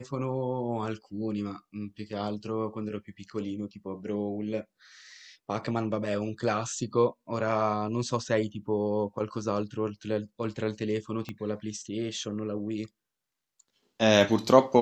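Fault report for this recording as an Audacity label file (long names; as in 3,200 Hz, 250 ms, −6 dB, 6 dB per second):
11.290000	11.290000	click −22 dBFS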